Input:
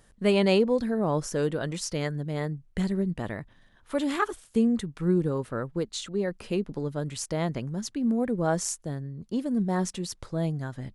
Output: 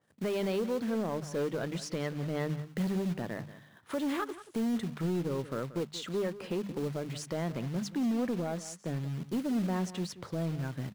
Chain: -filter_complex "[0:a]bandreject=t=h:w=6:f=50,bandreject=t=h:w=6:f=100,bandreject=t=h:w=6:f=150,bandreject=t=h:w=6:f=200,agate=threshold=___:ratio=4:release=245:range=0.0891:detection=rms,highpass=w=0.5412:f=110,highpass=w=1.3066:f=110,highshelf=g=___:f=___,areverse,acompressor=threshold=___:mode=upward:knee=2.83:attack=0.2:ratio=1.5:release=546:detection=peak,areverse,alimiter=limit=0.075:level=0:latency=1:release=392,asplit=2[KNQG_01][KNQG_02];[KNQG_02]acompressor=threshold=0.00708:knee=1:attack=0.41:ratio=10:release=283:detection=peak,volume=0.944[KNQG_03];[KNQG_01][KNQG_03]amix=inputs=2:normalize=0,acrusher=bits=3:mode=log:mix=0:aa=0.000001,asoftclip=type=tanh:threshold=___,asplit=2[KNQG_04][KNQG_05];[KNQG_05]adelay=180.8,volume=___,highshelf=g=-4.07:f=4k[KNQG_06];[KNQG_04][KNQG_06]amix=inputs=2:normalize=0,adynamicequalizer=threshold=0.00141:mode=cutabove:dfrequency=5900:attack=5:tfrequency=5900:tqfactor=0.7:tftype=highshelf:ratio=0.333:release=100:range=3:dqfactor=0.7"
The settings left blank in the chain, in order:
0.002, -8.5, 4k, 0.0126, 0.0562, 0.178